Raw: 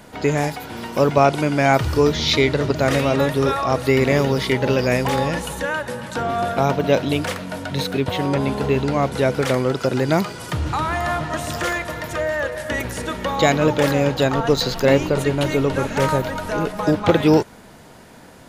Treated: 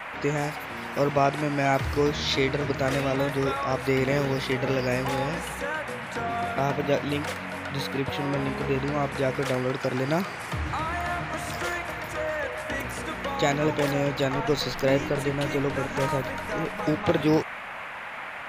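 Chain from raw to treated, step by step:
noise in a band 570–2,400 Hz −30 dBFS
level −7.5 dB

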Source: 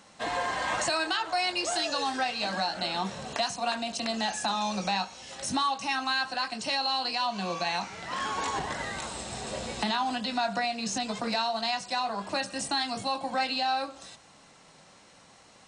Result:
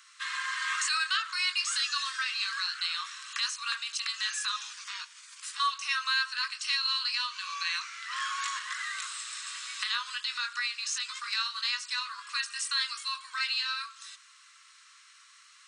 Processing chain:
Butterworth high-pass 1,100 Hz 96 dB per octave
0:04.56–0:05.60: gate on every frequency bin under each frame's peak −10 dB weak
level +1.5 dB

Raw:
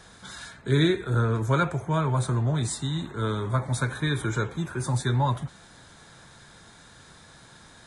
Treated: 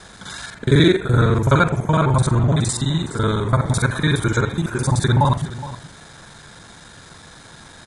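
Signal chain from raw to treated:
reversed piece by piece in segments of 42 ms
single-tap delay 417 ms −15.5 dB
level +8.5 dB

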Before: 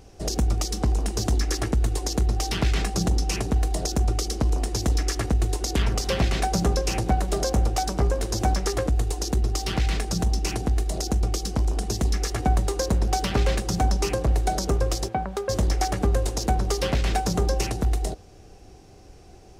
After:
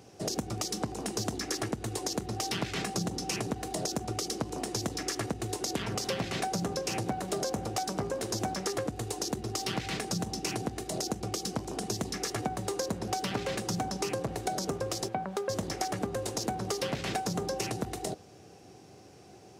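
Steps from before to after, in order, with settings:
high-pass filter 110 Hz 24 dB per octave
downward compressor, threshold −27 dBFS, peak gain reduction 9 dB
level −1.5 dB

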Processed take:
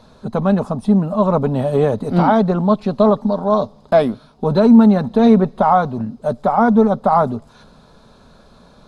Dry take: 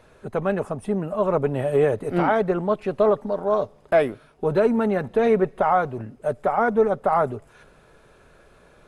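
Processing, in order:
drawn EQ curve 130 Hz 0 dB, 230 Hz +9 dB, 340 Hz −6 dB, 1,000 Hz +2 dB, 1,900 Hz −10 dB, 2,800 Hz −7 dB, 4,000 Hz +8 dB, 8,600 Hz −6 dB
level +6.5 dB

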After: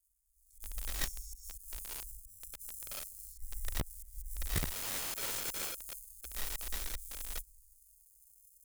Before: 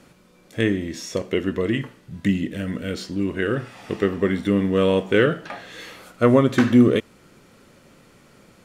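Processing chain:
LFO wah 0.33 Hz 500–2,500 Hz, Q 6.4
reverb whose tail is shaped and stops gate 430 ms rising, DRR −2.5 dB
volume swells 178 ms
in parallel at −9 dB: sample-rate reduction 1,900 Hz, jitter 0%
on the sum: inverse Chebyshev band-stop filter 150–2,900 Hz, stop band 60 dB
wrap-around overflow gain 49.5 dB
automatic gain control gain up to 9.5 dB
level +13 dB

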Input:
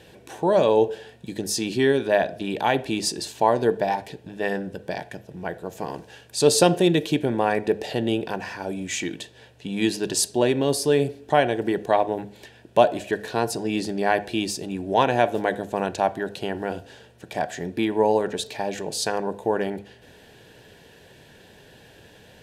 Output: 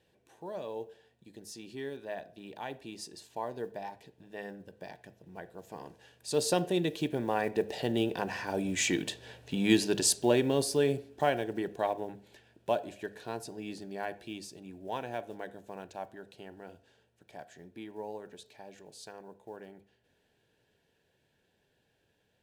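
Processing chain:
one scale factor per block 7 bits
source passing by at 0:09.21, 5 m/s, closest 3.8 metres

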